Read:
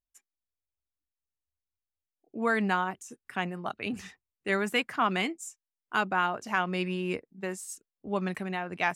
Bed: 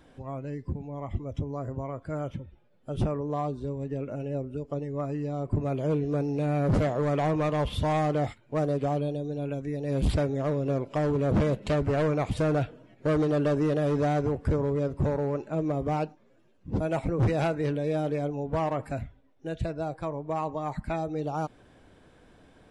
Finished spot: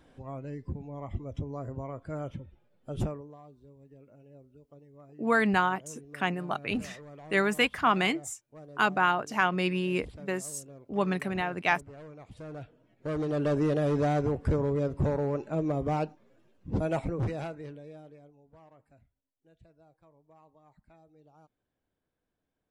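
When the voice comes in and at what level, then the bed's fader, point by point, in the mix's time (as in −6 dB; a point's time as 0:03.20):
2.85 s, +2.5 dB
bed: 0:03.05 −3.5 dB
0:03.38 −21.5 dB
0:12.19 −21.5 dB
0:13.56 −1 dB
0:16.94 −1 dB
0:18.43 −28.5 dB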